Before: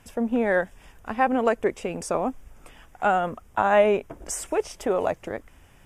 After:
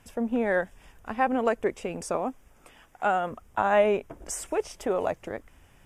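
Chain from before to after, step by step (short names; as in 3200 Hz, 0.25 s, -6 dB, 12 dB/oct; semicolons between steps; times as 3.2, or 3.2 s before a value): 2.16–3.31 low shelf 120 Hz -9.5 dB; gain -3 dB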